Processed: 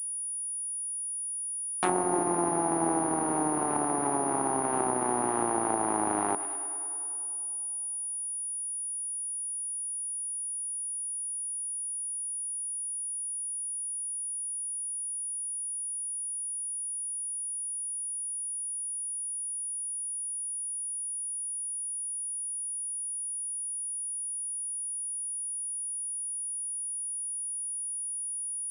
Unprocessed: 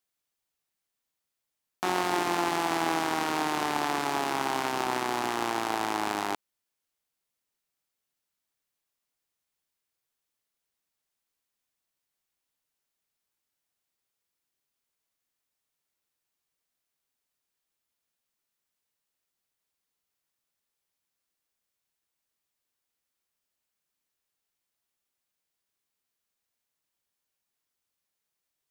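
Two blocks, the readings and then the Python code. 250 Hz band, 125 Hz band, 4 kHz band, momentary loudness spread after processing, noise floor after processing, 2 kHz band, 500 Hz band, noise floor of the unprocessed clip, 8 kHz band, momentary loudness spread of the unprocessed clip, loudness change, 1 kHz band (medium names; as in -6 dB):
+2.5 dB, no reading, under -15 dB, 4 LU, -35 dBFS, -8.5 dB, +2.0 dB, -85 dBFS, +18.5 dB, 3 LU, -1.5 dB, -0.5 dB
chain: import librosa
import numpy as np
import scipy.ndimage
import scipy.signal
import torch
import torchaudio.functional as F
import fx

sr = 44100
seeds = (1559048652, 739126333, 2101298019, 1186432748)

y = fx.echo_tape(x, sr, ms=100, feedback_pct=86, wet_db=-14.5, lp_hz=3400.0, drive_db=16.0, wow_cents=23)
y = fx.env_lowpass_down(y, sr, base_hz=770.0, full_db=-24.0)
y = fx.pwm(y, sr, carrier_hz=9700.0)
y = F.gain(torch.from_numpy(y), 2.5).numpy()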